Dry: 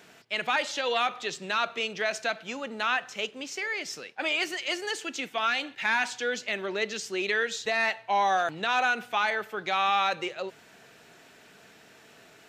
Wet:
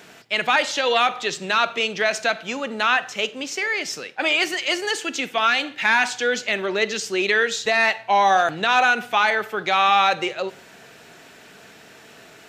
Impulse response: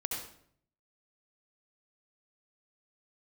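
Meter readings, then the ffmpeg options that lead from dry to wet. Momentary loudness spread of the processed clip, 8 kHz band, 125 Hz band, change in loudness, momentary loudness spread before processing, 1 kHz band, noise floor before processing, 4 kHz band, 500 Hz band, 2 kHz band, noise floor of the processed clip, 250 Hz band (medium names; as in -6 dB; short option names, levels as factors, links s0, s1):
8 LU, +8.0 dB, +8.0 dB, +8.0 dB, 8 LU, +8.0 dB, -55 dBFS, +8.0 dB, +8.0 dB, +8.0 dB, -47 dBFS, +8.0 dB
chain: -filter_complex "[0:a]asplit=2[s0][s1];[1:a]atrim=start_sample=2205,asetrate=70560,aresample=44100[s2];[s1][s2]afir=irnorm=-1:irlink=0,volume=0.188[s3];[s0][s3]amix=inputs=2:normalize=0,volume=2.24"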